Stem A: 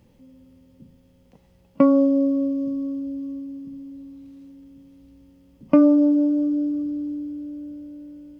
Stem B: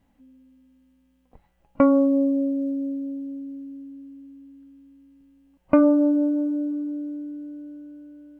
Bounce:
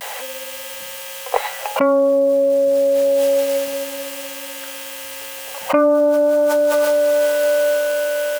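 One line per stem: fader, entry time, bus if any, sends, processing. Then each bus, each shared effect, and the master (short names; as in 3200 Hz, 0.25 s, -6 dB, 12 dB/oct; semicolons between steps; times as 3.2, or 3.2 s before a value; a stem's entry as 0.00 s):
-6.5 dB, 0.00 s, no send, dry
+1.0 dB, 8.5 ms, no send, elliptic high-pass 470 Hz, stop band 40 dB; high shelf 2100 Hz +11.5 dB; fast leveller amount 100%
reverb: off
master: dry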